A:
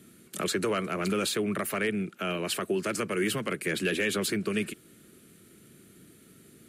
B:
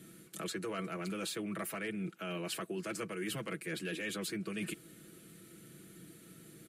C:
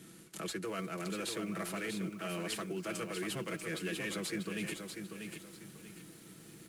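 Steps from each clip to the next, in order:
comb 6.1 ms, depth 59%; reverse; compressor 6:1, threshold -35 dBFS, peak gain reduction 12.5 dB; reverse; gain -1.5 dB
CVSD 64 kbps; lo-fi delay 0.641 s, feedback 35%, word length 10-bit, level -6 dB

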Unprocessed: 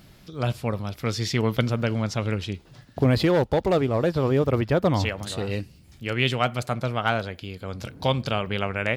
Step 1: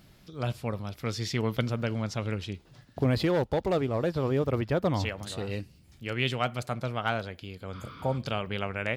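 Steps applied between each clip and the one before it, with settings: spectral repair 7.76–8.15, 960–6300 Hz before; gain -5.5 dB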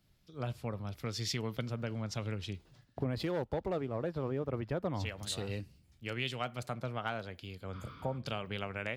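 compressor 4:1, threshold -34 dBFS, peak gain reduction 11.5 dB; three-band expander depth 70%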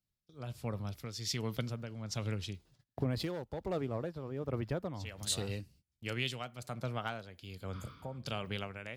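gate -58 dBFS, range -21 dB; tone controls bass +2 dB, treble +7 dB; tremolo 1.3 Hz, depth 60%

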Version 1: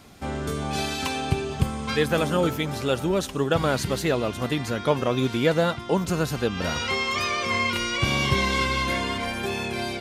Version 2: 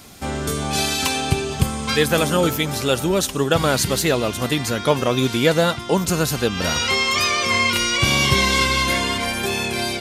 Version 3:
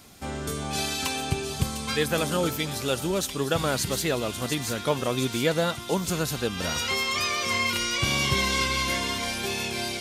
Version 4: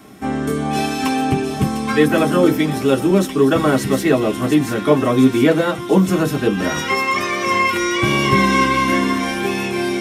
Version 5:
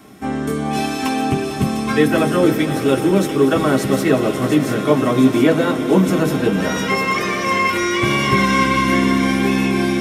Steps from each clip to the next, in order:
high shelf 4200 Hz +10.5 dB; gain +4 dB
thin delay 0.703 s, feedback 69%, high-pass 3900 Hz, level -6 dB; gain -7.5 dB
reverb RT60 0.15 s, pre-delay 3 ms, DRR -1.5 dB; gain -1 dB
swelling echo 91 ms, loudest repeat 5, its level -17 dB; gain -1 dB

